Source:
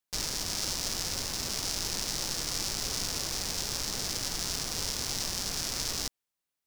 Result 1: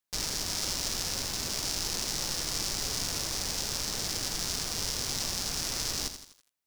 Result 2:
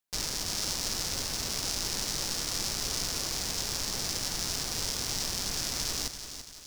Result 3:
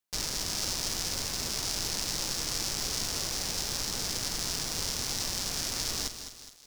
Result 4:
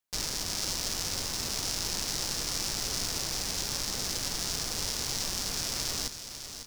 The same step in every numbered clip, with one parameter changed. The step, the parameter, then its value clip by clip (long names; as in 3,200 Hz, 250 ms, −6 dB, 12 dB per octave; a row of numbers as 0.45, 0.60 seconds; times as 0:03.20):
feedback echo at a low word length, delay time: 83, 337, 208, 551 milliseconds